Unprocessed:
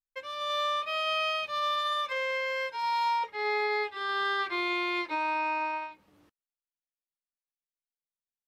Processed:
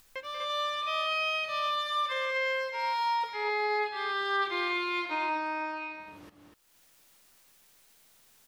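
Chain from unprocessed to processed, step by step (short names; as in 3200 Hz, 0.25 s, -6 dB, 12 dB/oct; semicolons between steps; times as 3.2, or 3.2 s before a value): upward compressor, threshold -33 dBFS; on a send: loudspeakers at several distances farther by 64 m -11 dB, 84 m -7 dB; on the sum: gain -1.5 dB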